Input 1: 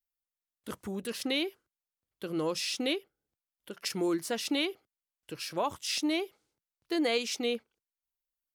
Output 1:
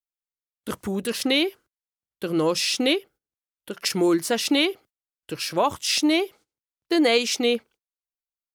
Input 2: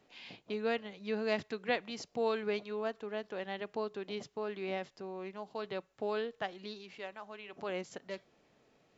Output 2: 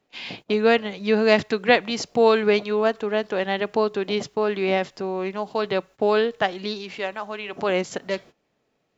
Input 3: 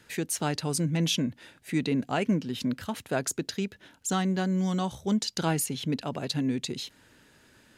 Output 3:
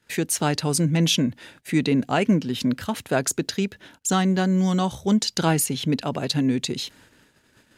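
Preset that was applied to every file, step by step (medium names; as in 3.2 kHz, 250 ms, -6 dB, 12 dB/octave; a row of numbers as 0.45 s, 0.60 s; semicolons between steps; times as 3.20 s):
gate -57 dBFS, range -19 dB; normalise loudness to -23 LUFS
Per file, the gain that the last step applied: +9.5 dB, +15.5 dB, +6.5 dB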